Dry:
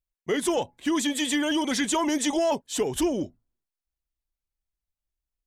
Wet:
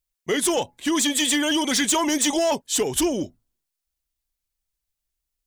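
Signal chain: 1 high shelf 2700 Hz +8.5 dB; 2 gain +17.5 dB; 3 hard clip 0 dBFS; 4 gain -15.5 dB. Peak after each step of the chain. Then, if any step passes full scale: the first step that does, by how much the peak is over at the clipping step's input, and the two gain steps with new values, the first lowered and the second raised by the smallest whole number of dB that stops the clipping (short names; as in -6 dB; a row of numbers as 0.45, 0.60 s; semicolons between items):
-9.0, +8.5, 0.0, -15.5 dBFS; step 2, 8.5 dB; step 2 +8.5 dB, step 4 -6.5 dB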